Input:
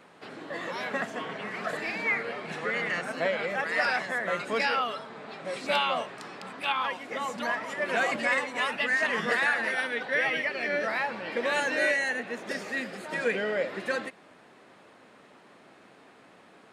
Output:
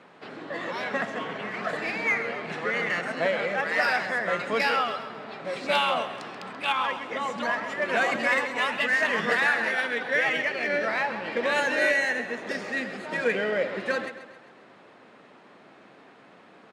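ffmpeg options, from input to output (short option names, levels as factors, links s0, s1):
-filter_complex "[0:a]highpass=95,adynamicsmooth=sensitivity=5.5:basefreq=6200,asplit=2[s0][s1];[s1]aecho=0:1:133|266|399|532|665:0.237|0.116|0.0569|0.0279|0.0137[s2];[s0][s2]amix=inputs=2:normalize=0,volume=1.33"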